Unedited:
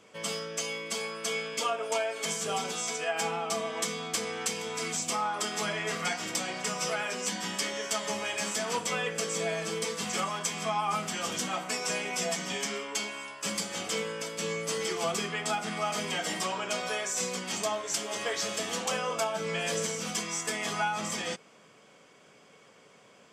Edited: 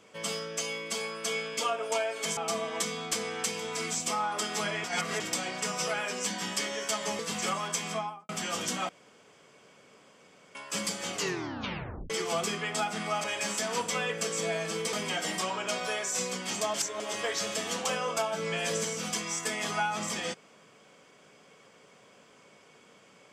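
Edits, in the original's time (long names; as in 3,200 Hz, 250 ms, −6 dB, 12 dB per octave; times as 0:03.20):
0:02.37–0:03.39: remove
0:05.86–0:06.22: reverse
0:08.21–0:09.90: move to 0:15.95
0:10.58–0:11.00: fade out and dull
0:11.60–0:13.26: fill with room tone
0:13.84: tape stop 0.97 s
0:17.76–0:18.02: reverse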